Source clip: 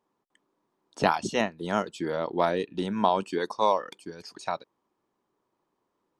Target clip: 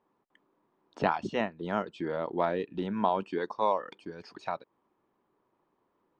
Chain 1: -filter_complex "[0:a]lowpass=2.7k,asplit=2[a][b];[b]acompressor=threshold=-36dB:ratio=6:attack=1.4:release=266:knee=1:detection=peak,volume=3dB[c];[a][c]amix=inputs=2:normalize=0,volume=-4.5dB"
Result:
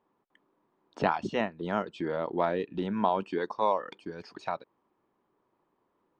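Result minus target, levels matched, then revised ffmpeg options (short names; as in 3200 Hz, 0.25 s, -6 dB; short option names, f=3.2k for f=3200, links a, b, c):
compressor: peak gain reduction -6 dB
-filter_complex "[0:a]lowpass=2.7k,asplit=2[a][b];[b]acompressor=threshold=-43dB:ratio=6:attack=1.4:release=266:knee=1:detection=peak,volume=3dB[c];[a][c]amix=inputs=2:normalize=0,volume=-4.5dB"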